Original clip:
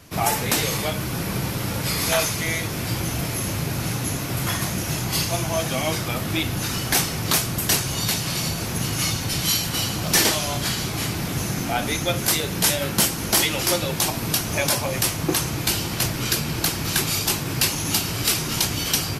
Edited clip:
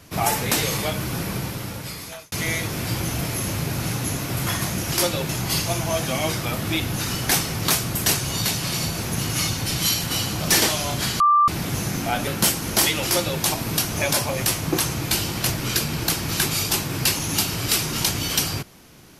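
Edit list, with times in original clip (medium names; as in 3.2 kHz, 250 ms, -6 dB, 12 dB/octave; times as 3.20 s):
1.15–2.32 s: fade out linear
10.83–11.11 s: bleep 1.18 kHz -12.5 dBFS
11.90–12.83 s: delete
13.61–13.98 s: copy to 4.92 s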